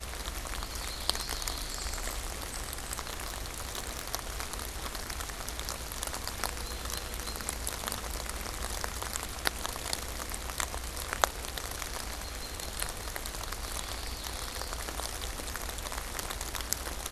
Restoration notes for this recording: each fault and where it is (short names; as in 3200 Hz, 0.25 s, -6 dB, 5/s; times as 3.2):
3.1–4.14 clipped -26.5 dBFS